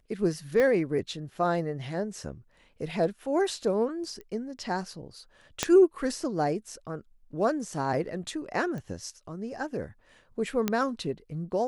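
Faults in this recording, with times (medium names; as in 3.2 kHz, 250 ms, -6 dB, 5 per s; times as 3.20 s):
0.60 s: pop -15 dBFS
4.21 s: pop -31 dBFS
5.63 s: pop -9 dBFS
8.78 s: pop -27 dBFS
10.68 s: pop -11 dBFS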